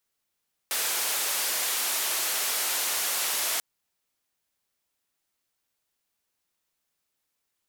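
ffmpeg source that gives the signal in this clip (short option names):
-f lavfi -i "anoisesrc=c=white:d=2.89:r=44100:seed=1,highpass=f=480,lowpass=f=15000,volume=-21.3dB"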